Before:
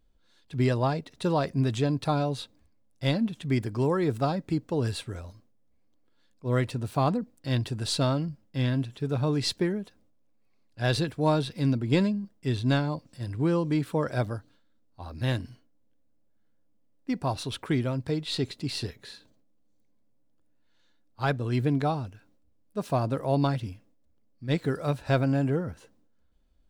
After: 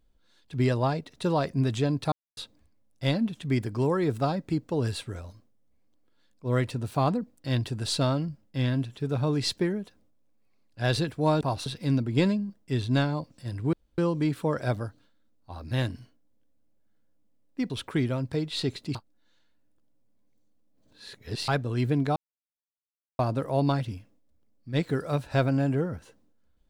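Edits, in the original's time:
2.12–2.37 s: mute
13.48 s: insert room tone 0.25 s
17.20–17.45 s: move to 11.41 s
18.70–21.23 s: reverse
21.91–22.94 s: mute

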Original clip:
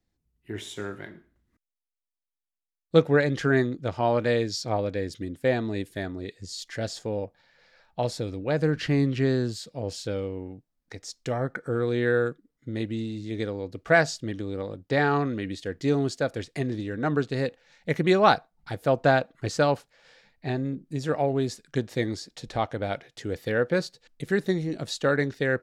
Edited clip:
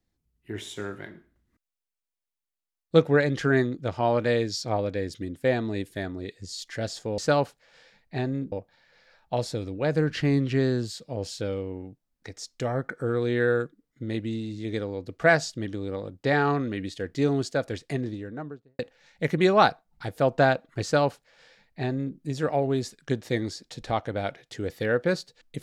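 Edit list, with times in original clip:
16.48–17.45 s: studio fade out
19.49–20.83 s: copy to 7.18 s

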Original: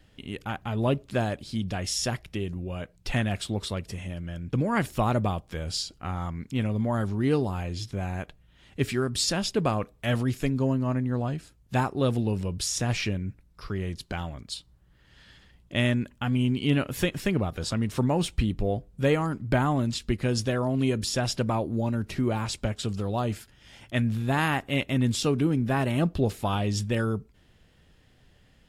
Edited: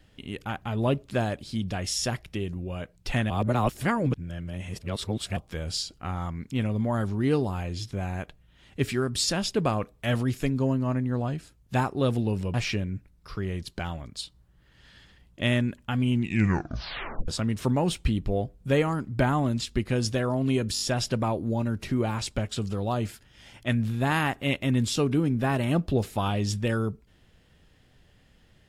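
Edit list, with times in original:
3.30–5.37 s: reverse
12.54–12.87 s: delete
16.45 s: tape stop 1.16 s
21.07 s: stutter 0.02 s, 4 plays

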